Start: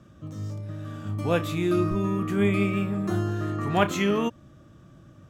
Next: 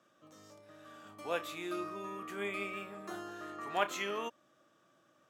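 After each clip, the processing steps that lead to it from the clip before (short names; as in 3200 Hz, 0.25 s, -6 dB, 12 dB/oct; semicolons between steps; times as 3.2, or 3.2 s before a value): HPF 540 Hz 12 dB/oct; gain -7.5 dB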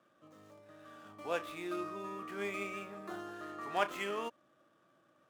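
median filter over 9 samples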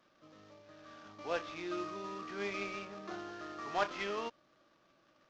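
CVSD 32 kbps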